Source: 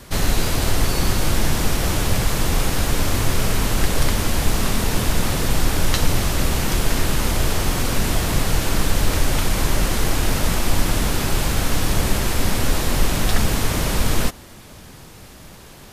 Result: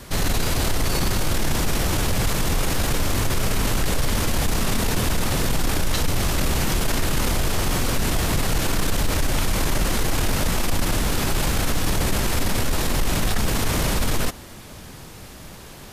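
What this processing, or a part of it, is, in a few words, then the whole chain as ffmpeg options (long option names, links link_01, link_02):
soft clipper into limiter: -af "asoftclip=type=tanh:threshold=-7dB,alimiter=limit=-15dB:level=0:latency=1:release=10,volume=1.5dB"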